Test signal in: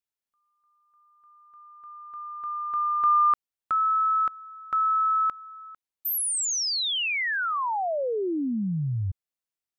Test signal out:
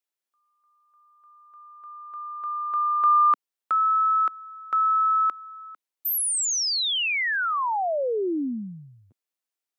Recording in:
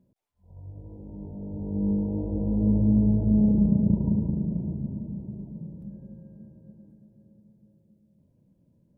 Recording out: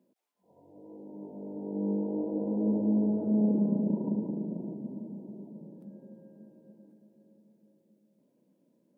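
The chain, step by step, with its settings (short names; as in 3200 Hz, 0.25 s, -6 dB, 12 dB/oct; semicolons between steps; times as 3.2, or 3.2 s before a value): HPF 250 Hz 24 dB/oct; gain +2 dB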